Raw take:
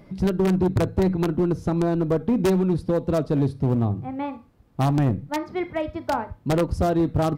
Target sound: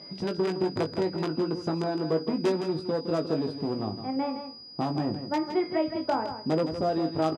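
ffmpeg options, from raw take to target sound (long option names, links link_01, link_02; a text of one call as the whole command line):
ffmpeg -i in.wav -filter_complex "[0:a]asettb=1/sr,asplit=3[link_01][link_02][link_03];[link_01]atrim=end=4.164[link_04];[link_02]atrim=start=4.16:end=6.89,asetpts=PTS-STARTPTS,afade=type=in:duration=0.004:curve=qsin,afade=type=out:start_time=2.726:duration=0.004:curve=qsin,tiltshelf=frequency=970:gain=4.5[link_05];[link_03]atrim=start=6.886[link_06];[link_04][link_05]acrossfade=duration=0.004:curve1=hsin:curve2=qsin[link_07];[link_07][link_06]acrossfade=duration=0.004:curve1=qsin:curve2=hsin,acompressor=threshold=-25dB:ratio=2.5,aeval=exprs='val(0)+0.00562*sin(2*PI*4900*n/s)':channel_layout=same,highpass=240,lowpass=6200,asplit=2[link_08][link_09];[link_09]adelay=19,volume=-6dB[link_10];[link_08][link_10]amix=inputs=2:normalize=0,aecho=1:1:163:0.335" out.wav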